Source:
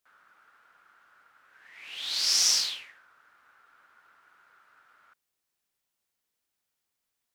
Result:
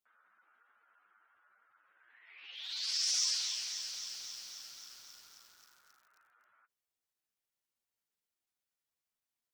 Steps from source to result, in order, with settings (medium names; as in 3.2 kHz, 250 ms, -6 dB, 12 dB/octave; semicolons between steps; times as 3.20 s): tempo 0.77×; flange 1.4 Hz, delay 8.2 ms, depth 1.5 ms, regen -34%; spectral gate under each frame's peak -25 dB strong; in parallel at -8.5 dB: hard clipper -23 dBFS, distortion -16 dB; on the sum: bit-crushed delay 267 ms, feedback 80%, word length 8-bit, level -7.5 dB; trim -7.5 dB